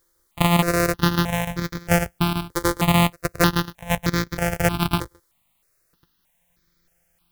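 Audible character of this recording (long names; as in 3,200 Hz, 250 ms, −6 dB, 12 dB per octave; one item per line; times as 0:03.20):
a buzz of ramps at a fixed pitch in blocks of 256 samples
chopped level 6.8 Hz, depth 65%, duty 85%
a quantiser's noise floor 12 bits, dither triangular
notches that jump at a steady rate 3.2 Hz 720–2,800 Hz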